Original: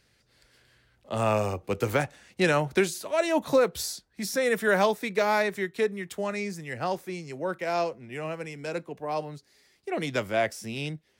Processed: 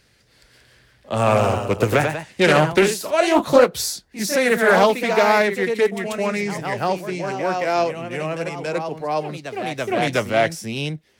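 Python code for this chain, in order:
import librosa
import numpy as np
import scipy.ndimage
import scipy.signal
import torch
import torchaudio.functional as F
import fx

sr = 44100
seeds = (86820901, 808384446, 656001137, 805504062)

y = fx.echo_pitch(x, sr, ms=204, semitones=1, count=2, db_per_echo=-6.0)
y = fx.doppler_dist(y, sr, depth_ms=0.27)
y = y * 10.0 ** (7.5 / 20.0)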